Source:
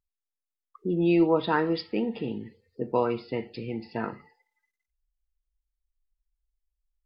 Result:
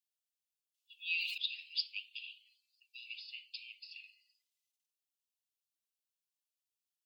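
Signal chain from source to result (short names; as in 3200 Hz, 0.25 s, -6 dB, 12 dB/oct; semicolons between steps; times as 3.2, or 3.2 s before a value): steep high-pass 2500 Hz 96 dB/oct; 0.98–1.38 sustainer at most 37 dB/s; gain +2.5 dB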